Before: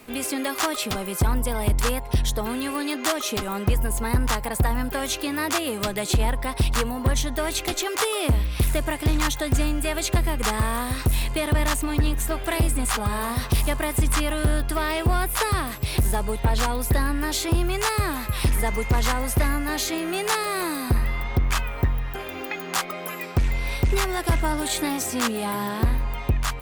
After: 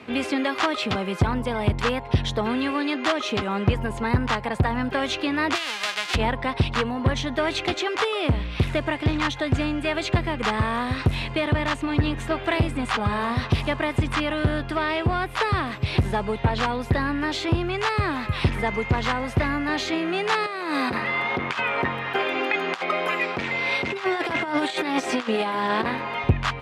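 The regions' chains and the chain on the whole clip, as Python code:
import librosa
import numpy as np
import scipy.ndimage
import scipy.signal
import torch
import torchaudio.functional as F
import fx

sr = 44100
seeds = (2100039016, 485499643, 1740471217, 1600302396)

y = fx.envelope_flatten(x, sr, power=0.1, at=(5.54, 6.14), fade=0.02)
y = fx.highpass(y, sr, hz=1200.0, slope=6, at=(5.54, 6.14), fade=0.02)
y = fx.chain(y, sr, fx.highpass(hz=300.0, slope=12),
    fx.over_compress(threshold_db=-30.0, ratio=-0.5), at=(20.46, 26.24))
y = scipy.signal.sosfilt(scipy.signal.cheby1(2, 1.0, [100.0, 3100.0], 'bandpass', fs=sr, output='sos'), y)
y = fx.rider(y, sr, range_db=10, speed_s=0.5)
y = y * 10.0 ** (3.5 / 20.0)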